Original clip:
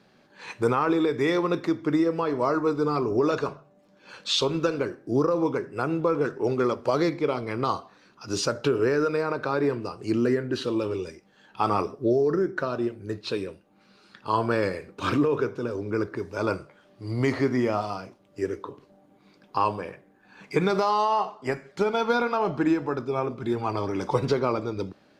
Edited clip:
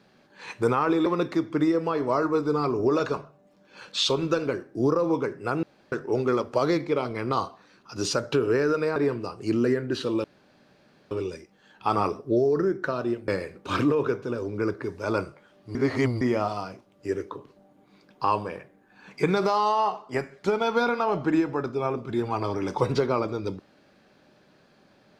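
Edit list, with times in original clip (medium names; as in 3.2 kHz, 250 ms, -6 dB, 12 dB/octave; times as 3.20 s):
1.06–1.38 s: delete
5.95–6.24 s: room tone
9.28–9.57 s: delete
10.85 s: insert room tone 0.87 s
13.02–14.61 s: delete
17.08–17.54 s: reverse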